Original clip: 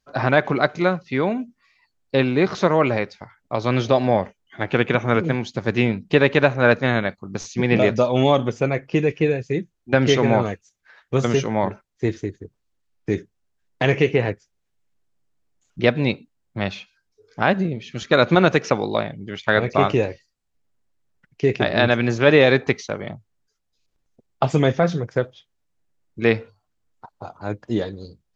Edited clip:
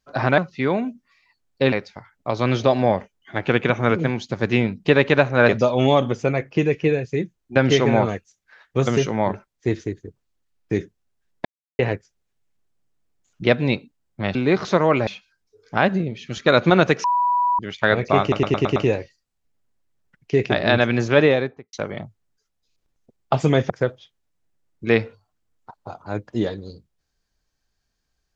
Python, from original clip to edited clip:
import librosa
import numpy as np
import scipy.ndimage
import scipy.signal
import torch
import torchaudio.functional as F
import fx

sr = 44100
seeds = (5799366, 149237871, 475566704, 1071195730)

y = fx.studio_fade_out(x, sr, start_s=22.18, length_s=0.65)
y = fx.edit(y, sr, fx.cut(start_s=0.38, length_s=0.53),
    fx.move(start_s=2.25, length_s=0.72, to_s=16.72),
    fx.cut(start_s=6.74, length_s=1.12),
    fx.silence(start_s=13.82, length_s=0.34),
    fx.bleep(start_s=18.69, length_s=0.55, hz=980.0, db=-16.0),
    fx.stutter(start_s=19.86, slice_s=0.11, count=6),
    fx.cut(start_s=24.8, length_s=0.25), tone=tone)